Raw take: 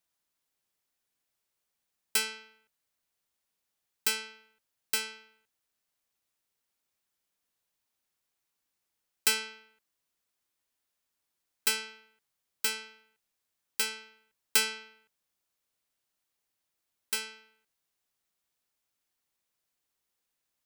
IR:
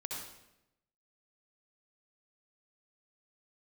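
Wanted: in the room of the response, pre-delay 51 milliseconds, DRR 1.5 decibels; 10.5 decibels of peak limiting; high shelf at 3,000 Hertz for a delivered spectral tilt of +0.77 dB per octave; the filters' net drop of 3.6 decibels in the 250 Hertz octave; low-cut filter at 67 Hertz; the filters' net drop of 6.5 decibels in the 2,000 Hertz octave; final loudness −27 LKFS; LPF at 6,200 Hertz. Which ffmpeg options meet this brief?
-filter_complex "[0:a]highpass=67,lowpass=6200,equalizer=frequency=250:width_type=o:gain=-4,equalizer=frequency=2000:width_type=o:gain=-6.5,highshelf=frequency=3000:gain=-6,alimiter=level_in=6dB:limit=-24dB:level=0:latency=1,volume=-6dB,asplit=2[link_01][link_02];[1:a]atrim=start_sample=2205,adelay=51[link_03];[link_02][link_03]afir=irnorm=-1:irlink=0,volume=-2dB[link_04];[link_01][link_04]amix=inputs=2:normalize=0,volume=15.5dB"

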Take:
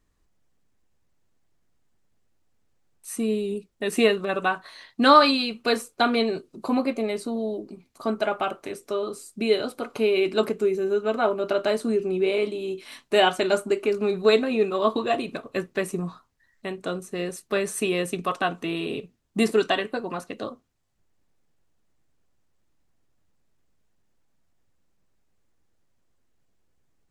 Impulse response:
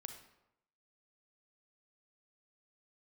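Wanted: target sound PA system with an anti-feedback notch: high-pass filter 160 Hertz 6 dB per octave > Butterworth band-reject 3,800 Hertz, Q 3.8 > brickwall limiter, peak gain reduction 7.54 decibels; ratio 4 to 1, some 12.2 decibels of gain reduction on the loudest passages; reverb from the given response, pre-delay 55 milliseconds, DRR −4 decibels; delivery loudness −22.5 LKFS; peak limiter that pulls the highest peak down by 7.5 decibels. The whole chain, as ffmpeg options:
-filter_complex "[0:a]acompressor=threshold=-25dB:ratio=4,alimiter=limit=-21.5dB:level=0:latency=1,asplit=2[link_01][link_02];[1:a]atrim=start_sample=2205,adelay=55[link_03];[link_02][link_03]afir=irnorm=-1:irlink=0,volume=8.5dB[link_04];[link_01][link_04]amix=inputs=2:normalize=0,highpass=frequency=160:poles=1,asuperstop=centerf=3800:order=8:qfactor=3.8,volume=7.5dB,alimiter=limit=-13dB:level=0:latency=1"

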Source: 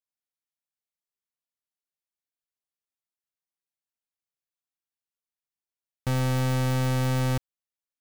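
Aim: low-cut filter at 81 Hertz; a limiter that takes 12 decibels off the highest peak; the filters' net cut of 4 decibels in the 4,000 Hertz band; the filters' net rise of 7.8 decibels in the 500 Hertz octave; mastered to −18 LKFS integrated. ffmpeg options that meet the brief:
ffmpeg -i in.wav -af "highpass=81,equalizer=frequency=500:width_type=o:gain=8.5,equalizer=frequency=4000:width_type=o:gain=-5.5,volume=18.5dB,alimiter=limit=-8.5dB:level=0:latency=1" out.wav

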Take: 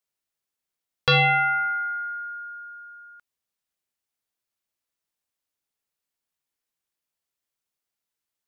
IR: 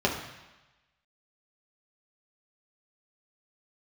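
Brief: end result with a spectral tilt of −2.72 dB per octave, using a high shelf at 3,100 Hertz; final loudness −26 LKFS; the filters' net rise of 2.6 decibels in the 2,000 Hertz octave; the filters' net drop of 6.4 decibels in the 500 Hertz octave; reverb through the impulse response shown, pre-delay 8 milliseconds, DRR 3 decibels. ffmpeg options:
-filter_complex "[0:a]equalizer=frequency=500:width_type=o:gain=-6.5,equalizer=frequency=2000:width_type=o:gain=5.5,highshelf=frequency=3100:gain=-4,asplit=2[link_01][link_02];[1:a]atrim=start_sample=2205,adelay=8[link_03];[link_02][link_03]afir=irnorm=-1:irlink=0,volume=-16dB[link_04];[link_01][link_04]amix=inputs=2:normalize=0,volume=-8dB"

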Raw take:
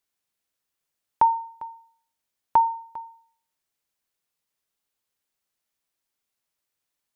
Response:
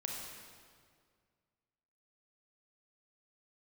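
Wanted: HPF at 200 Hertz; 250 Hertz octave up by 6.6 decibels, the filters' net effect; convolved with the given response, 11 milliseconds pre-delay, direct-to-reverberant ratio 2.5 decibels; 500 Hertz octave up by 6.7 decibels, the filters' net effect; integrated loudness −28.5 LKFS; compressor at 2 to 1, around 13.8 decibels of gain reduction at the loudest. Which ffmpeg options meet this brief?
-filter_complex "[0:a]highpass=200,equalizer=frequency=250:width_type=o:gain=7.5,equalizer=frequency=500:width_type=o:gain=7,acompressor=threshold=-38dB:ratio=2,asplit=2[link_01][link_02];[1:a]atrim=start_sample=2205,adelay=11[link_03];[link_02][link_03]afir=irnorm=-1:irlink=0,volume=-3.5dB[link_04];[link_01][link_04]amix=inputs=2:normalize=0,volume=3.5dB"

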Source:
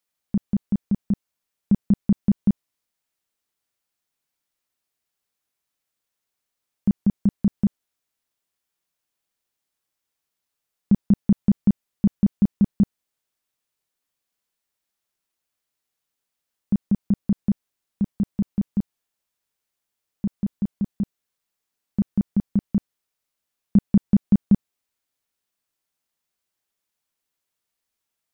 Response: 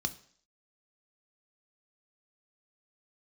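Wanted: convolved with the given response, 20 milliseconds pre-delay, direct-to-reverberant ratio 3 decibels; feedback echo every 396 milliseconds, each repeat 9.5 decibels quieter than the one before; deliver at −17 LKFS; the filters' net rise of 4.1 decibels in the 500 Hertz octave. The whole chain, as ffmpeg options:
-filter_complex "[0:a]equalizer=frequency=500:width_type=o:gain=5.5,aecho=1:1:396|792|1188|1584:0.335|0.111|0.0365|0.012,asplit=2[link_01][link_02];[1:a]atrim=start_sample=2205,adelay=20[link_03];[link_02][link_03]afir=irnorm=-1:irlink=0,volume=-5.5dB[link_04];[link_01][link_04]amix=inputs=2:normalize=0,volume=3dB"

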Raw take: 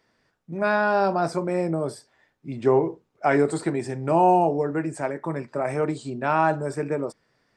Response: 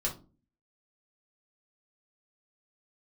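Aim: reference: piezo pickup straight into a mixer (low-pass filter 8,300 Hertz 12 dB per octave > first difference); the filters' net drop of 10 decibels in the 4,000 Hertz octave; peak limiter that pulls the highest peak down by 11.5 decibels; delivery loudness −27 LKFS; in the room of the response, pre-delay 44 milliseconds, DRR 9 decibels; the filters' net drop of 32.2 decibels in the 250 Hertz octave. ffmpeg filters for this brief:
-filter_complex "[0:a]equalizer=frequency=250:width_type=o:gain=-7.5,equalizer=frequency=4000:width_type=o:gain=-7,alimiter=limit=-21.5dB:level=0:latency=1,asplit=2[link_01][link_02];[1:a]atrim=start_sample=2205,adelay=44[link_03];[link_02][link_03]afir=irnorm=-1:irlink=0,volume=-13.5dB[link_04];[link_01][link_04]amix=inputs=2:normalize=0,lowpass=8300,aderivative,volume=22.5dB"

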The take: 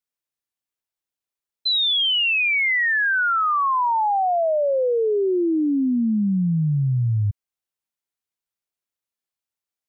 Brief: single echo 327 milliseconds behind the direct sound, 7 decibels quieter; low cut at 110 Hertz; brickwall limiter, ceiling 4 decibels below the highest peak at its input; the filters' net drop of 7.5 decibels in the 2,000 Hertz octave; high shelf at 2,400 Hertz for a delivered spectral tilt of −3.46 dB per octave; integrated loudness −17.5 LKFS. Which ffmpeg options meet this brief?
ffmpeg -i in.wav -af "highpass=110,equalizer=frequency=2000:width_type=o:gain=-8,highshelf=frequency=2400:gain=-3.5,alimiter=limit=-21dB:level=0:latency=1,aecho=1:1:327:0.447,volume=6.5dB" out.wav

